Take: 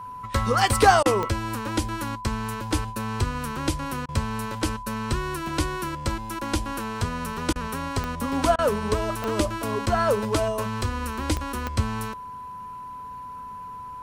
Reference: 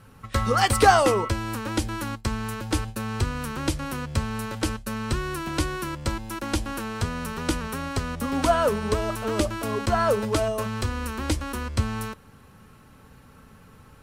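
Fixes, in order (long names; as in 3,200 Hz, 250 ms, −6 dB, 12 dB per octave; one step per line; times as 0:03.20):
click removal
notch filter 1,000 Hz, Q 30
repair the gap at 0:01.03/0:04.06/0:07.53/0:08.56, 25 ms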